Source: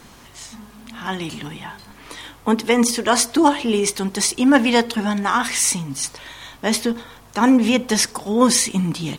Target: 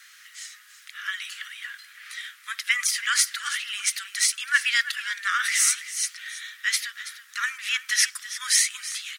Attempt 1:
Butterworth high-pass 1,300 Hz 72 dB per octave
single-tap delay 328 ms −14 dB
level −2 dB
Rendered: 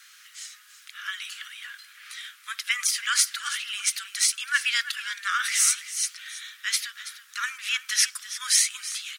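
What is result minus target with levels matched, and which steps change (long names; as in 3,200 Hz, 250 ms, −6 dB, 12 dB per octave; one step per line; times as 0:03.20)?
2,000 Hz band −2.5 dB
add after Butterworth high-pass: parametric band 1,900 Hz +6.5 dB 0.3 octaves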